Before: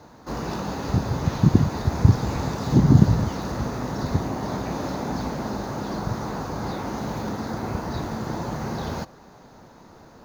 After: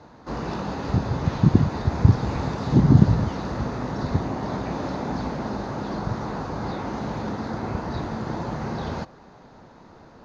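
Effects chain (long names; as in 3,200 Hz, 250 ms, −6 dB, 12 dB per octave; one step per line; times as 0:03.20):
low-pass filter 4,500 Hz 12 dB per octave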